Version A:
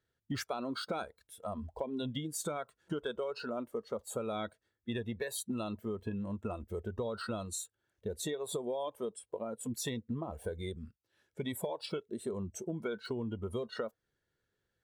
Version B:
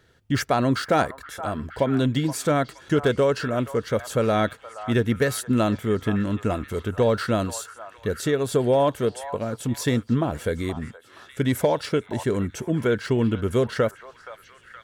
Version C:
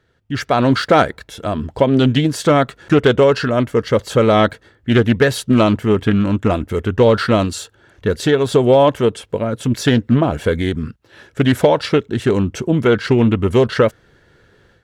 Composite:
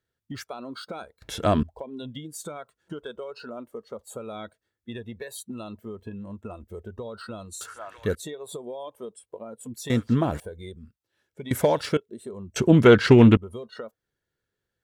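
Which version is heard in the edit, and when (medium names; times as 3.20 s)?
A
1.22–1.63 s: from C
7.61–8.15 s: from B
9.90–10.40 s: from B
11.51–11.97 s: from B
12.56–13.37 s: from C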